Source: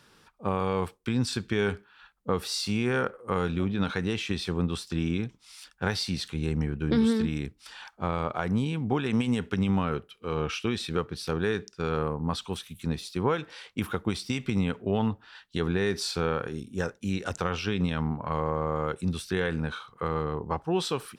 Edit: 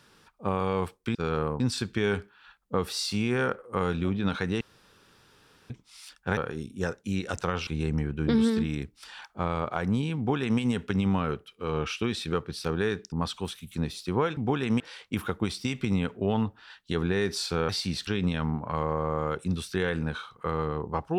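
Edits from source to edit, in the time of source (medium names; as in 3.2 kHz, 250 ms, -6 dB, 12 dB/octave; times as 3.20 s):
4.16–5.25 s: room tone
5.92–6.30 s: swap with 16.34–17.64 s
8.80–9.23 s: copy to 13.45 s
11.75–12.20 s: move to 1.15 s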